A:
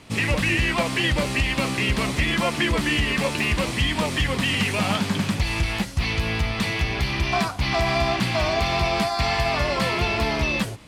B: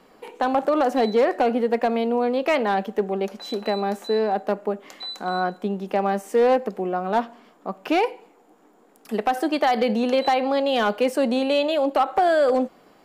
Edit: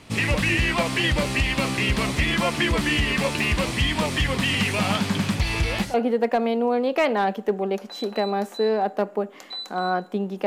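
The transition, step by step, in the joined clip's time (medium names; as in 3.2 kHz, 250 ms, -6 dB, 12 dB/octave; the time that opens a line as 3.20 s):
A
5.54 s: add B from 1.04 s 0.40 s -16.5 dB
5.94 s: go over to B from 1.44 s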